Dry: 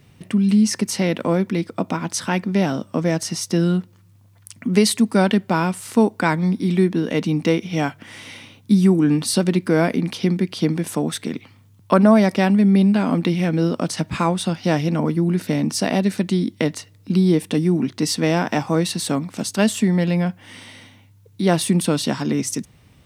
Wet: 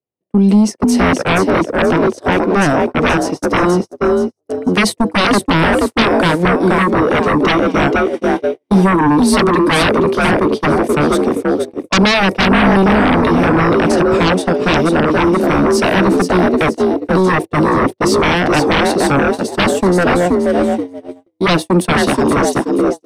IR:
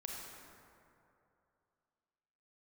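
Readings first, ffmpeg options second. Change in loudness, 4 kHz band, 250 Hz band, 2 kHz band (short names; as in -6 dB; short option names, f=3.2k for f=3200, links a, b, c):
+6.5 dB, +8.0 dB, +5.0 dB, +13.0 dB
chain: -filter_complex "[0:a]equalizer=f=99:t=o:w=0.33:g=9,asplit=5[a][b][c][d][e];[b]adelay=477,afreqshift=46,volume=-5.5dB[f];[c]adelay=954,afreqshift=92,volume=-14.1dB[g];[d]adelay=1431,afreqshift=138,volume=-22.8dB[h];[e]adelay=1908,afreqshift=184,volume=-31.4dB[i];[a][f][g][h][i]amix=inputs=5:normalize=0,acrossover=split=360|710|6100[j][k][l][m];[j]flanger=delay=15:depth=5.9:speed=0.13[n];[k]aeval=exprs='0.266*sin(PI/2*7.94*val(0)/0.266)':c=same[o];[n][o][l][m]amix=inputs=4:normalize=0,agate=range=-48dB:threshold=-16dB:ratio=16:detection=peak,volume=1.5dB"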